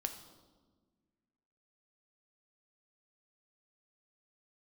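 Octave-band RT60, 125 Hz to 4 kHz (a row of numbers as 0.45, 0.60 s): 2.0, 2.1, 1.6, 1.2, 0.90, 1.0 s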